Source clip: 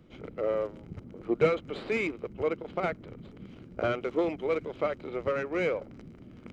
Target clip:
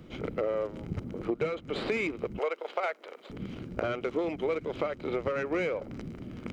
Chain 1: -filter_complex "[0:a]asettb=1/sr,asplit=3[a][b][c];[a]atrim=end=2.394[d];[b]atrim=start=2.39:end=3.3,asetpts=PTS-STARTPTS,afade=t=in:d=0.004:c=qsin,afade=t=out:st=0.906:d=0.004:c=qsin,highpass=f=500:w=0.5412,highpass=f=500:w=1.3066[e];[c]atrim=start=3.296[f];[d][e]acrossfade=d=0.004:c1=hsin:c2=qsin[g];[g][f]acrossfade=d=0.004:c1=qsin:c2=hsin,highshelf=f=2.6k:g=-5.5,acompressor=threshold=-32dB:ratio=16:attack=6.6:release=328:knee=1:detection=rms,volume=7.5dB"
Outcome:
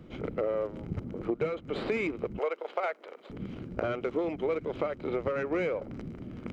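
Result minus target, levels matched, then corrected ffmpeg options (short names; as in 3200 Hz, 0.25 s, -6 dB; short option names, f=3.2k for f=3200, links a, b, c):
4000 Hz band -4.0 dB
-filter_complex "[0:a]asettb=1/sr,asplit=3[a][b][c];[a]atrim=end=2.394[d];[b]atrim=start=2.39:end=3.3,asetpts=PTS-STARTPTS,afade=t=in:d=0.004:c=qsin,afade=t=out:st=0.906:d=0.004:c=qsin,highpass=f=500:w=0.5412,highpass=f=500:w=1.3066[e];[c]atrim=start=3.296[f];[d][e]acrossfade=d=0.004:c1=hsin:c2=qsin[g];[g][f]acrossfade=d=0.004:c1=qsin:c2=hsin,highshelf=f=2.6k:g=2,acompressor=threshold=-32dB:ratio=16:attack=6.6:release=328:knee=1:detection=rms,volume=7.5dB"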